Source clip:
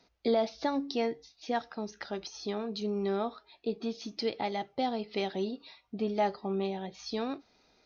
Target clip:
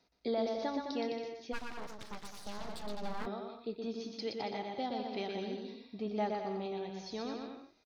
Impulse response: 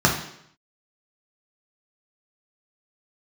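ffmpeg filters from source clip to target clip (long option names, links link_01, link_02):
-filter_complex "[0:a]aecho=1:1:120|210|277.5|328.1|366.1:0.631|0.398|0.251|0.158|0.1,asplit=3[link_01][link_02][link_03];[link_01]afade=type=out:start_time=1.52:duration=0.02[link_04];[link_02]aeval=exprs='abs(val(0))':channel_layout=same,afade=type=in:start_time=1.52:duration=0.02,afade=type=out:start_time=3.25:duration=0.02[link_05];[link_03]afade=type=in:start_time=3.25:duration=0.02[link_06];[link_04][link_05][link_06]amix=inputs=3:normalize=0,volume=-7dB"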